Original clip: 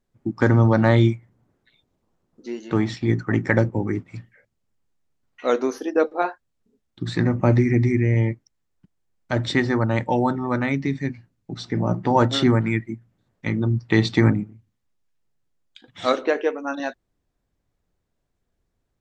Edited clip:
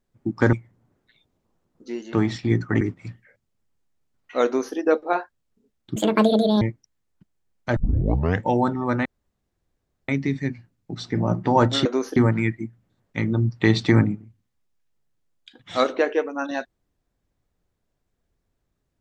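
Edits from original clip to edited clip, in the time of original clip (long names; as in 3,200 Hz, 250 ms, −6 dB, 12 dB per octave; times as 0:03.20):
0:00.53–0:01.11: remove
0:03.39–0:03.90: remove
0:05.54–0:05.85: duplicate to 0:12.45
0:07.05–0:08.24: play speed 182%
0:09.39: tape start 0.69 s
0:10.68: splice in room tone 1.03 s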